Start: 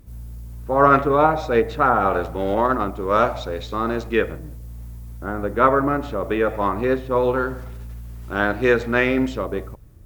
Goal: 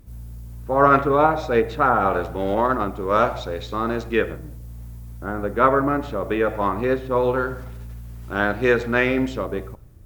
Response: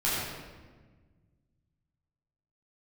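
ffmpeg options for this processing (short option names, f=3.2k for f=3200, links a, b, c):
-filter_complex "[0:a]asplit=2[a][b];[1:a]atrim=start_sample=2205,atrim=end_sample=6174[c];[b][c]afir=irnorm=-1:irlink=0,volume=-26.5dB[d];[a][d]amix=inputs=2:normalize=0,volume=-1dB"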